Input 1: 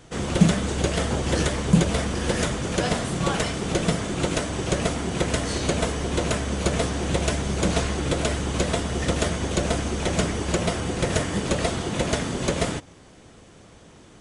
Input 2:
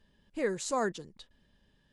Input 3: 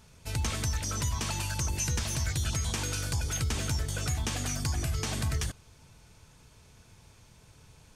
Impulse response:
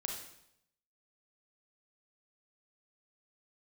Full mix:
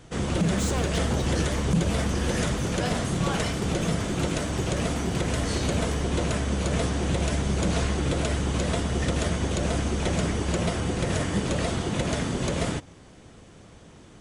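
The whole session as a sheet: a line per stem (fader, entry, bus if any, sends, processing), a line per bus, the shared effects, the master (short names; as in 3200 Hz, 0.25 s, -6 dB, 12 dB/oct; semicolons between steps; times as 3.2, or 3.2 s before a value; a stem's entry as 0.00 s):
-1.5 dB, 0.00 s, no send, tone controls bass +3 dB, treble -1 dB
-9.5 dB, 0.00 s, no send, sample leveller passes 5
-9.5 dB, 0.50 s, no send, dry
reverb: off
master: limiter -15 dBFS, peak gain reduction 11 dB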